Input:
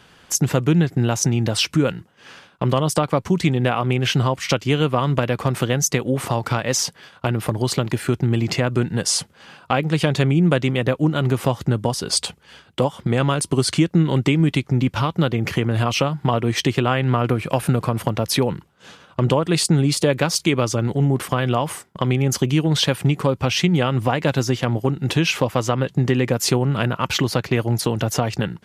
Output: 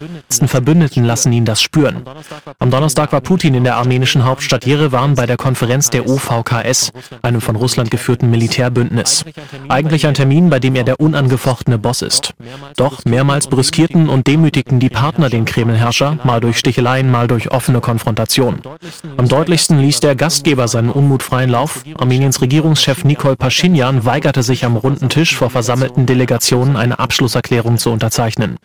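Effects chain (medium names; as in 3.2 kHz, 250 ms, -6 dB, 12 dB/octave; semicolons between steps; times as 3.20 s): reverse echo 662 ms -20 dB; waveshaping leveller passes 2; trim +1.5 dB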